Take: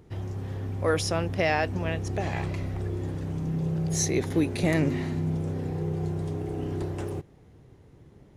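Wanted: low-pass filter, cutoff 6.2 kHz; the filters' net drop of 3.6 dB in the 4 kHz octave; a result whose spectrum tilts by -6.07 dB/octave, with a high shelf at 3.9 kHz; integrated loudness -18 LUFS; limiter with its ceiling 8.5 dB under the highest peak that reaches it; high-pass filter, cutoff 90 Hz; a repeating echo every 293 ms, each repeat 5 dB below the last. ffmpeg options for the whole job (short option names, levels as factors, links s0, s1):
-af "highpass=90,lowpass=6200,highshelf=f=3900:g=3.5,equalizer=f=4000:t=o:g=-6.5,alimiter=limit=0.0944:level=0:latency=1,aecho=1:1:293|586|879|1172|1465|1758|2051:0.562|0.315|0.176|0.0988|0.0553|0.031|0.0173,volume=4.22"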